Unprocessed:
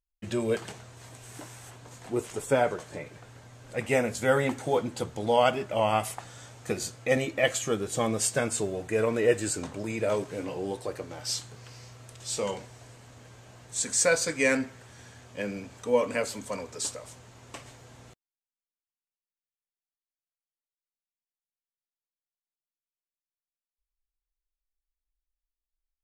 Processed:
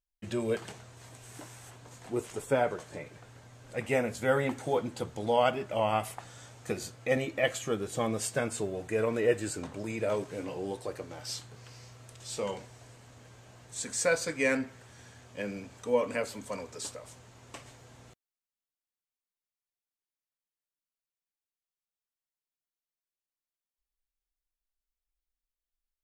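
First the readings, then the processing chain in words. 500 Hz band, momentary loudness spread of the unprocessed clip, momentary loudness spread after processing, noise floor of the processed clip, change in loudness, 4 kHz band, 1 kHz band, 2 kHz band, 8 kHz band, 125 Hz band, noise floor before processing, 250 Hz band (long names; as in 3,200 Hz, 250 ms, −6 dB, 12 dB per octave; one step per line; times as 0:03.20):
−3.0 dB, 21 LU, 20 LU, below −85 dBFS, −3.5 dB, −5.0 dB, −3.0 dB, −3.5 dB, −7.5 dB, −3.0 dB, below −85 dBFS, −3.0 dB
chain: dynamic equaliser 7,100 Hz, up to −5 dB, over −44 dBFS, Q 0.75
level −3 dB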